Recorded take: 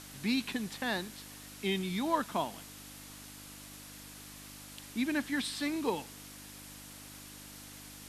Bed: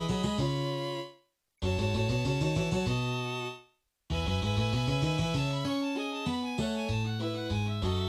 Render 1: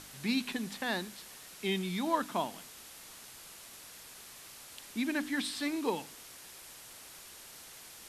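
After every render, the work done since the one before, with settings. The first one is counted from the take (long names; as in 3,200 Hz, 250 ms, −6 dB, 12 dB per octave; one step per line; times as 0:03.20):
hum removal 50 Hz, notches 6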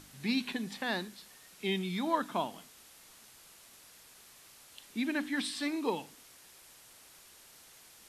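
noise reduction from a noise print 6 dB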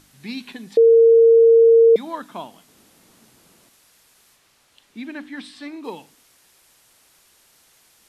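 0:00.77–0:01.96: beep over 458 Hz −8 dBFS
0:02.68–0:03.69: parametric band 220 Hz +15 dB 2.8 octaves
0:04.35–0:05.83: low-pass filter 5,000 Hz → 2,800 Hz 6 dB per octave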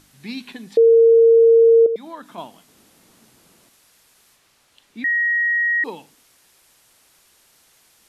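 0:01.86–0:02.38: downward compressor 1.5 to 1, threshold −40 dBFS
0:05.04–0:05.84: beep over 1,890 Hz −16 dBFS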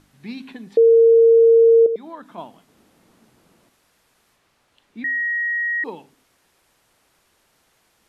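high-shelf EQ 2,800 Hz −11 dB
hum removal 132.8 Hz, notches 3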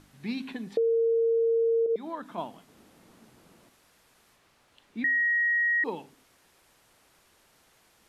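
brickwall limiter −16.5 dBFS, peak gain reduction 8.5 dB
downward compressor 3 to 1, threshold −24 dBFS, peak gain reduction 4.5 dB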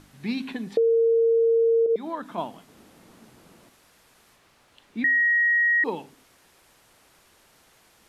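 level +4.5 dB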